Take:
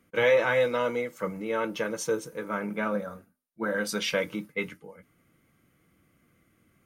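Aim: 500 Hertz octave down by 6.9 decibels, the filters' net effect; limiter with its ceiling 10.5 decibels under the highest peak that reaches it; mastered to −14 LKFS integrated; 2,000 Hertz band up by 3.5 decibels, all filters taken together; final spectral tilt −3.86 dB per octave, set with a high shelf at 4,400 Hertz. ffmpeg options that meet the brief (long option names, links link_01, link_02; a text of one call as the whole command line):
ffmpeg -i in.wav -af "equalizer=frequency=500:width_type=o:gain=-7.5,equalizer=frequency=2000:width_type=o:gain=6,highshelf=frequency=4400:gain=-6,volume=19dB,alimiter=limit=-2.5dB:level=0:latency=1" out.wav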